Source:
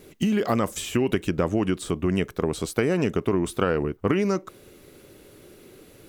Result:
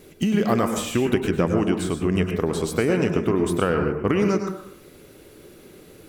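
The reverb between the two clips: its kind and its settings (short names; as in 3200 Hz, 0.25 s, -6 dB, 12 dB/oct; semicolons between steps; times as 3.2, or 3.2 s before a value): plate-style reverb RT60 0.63 s, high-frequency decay 0.45×, pre-delay 90 ms, DRR 4.5 dB; gain +1 dB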